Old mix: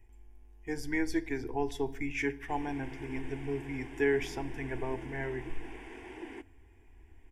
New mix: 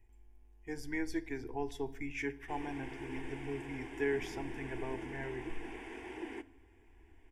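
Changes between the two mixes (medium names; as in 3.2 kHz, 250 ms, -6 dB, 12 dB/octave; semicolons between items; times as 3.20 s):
speech -5.5 dB; background: send +7.0 dB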